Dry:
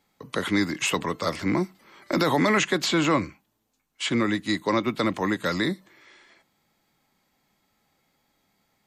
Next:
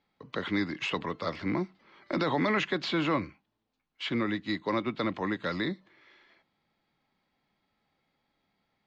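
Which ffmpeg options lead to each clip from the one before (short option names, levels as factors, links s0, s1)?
-af "lowpass=f=4500:w=0.5412,lowpass=f=4500:w=1.3066,volume=0.501"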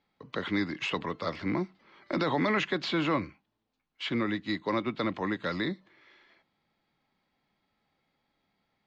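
-af anull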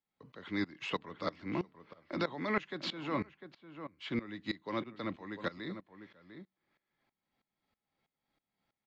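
-filter_complex "[0:a]asplit=2[s0][s1];[s1]adelay=699.7,volume=0.251,highshelf=f=4000:g=-15.7[s2];[s0][s2]amix=inputs=2:normalize=0,aeval=exprs='val(0)*pow(10,-19*if(lt(mod(-3.1*n/s,1),2*abs(-3.1)/1000),1-mod(-3.1*n/s,1)/(2*abs(-3.1)/1000),(mod(-3.1*n/s,1)-2*abs(-3.1)/1000)/(1-2*abs(-3.1)/1000))/20)':c=same,volume=0.794"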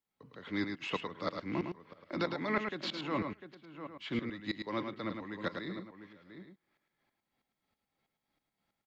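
-af "aecho=1:1:107:0.501"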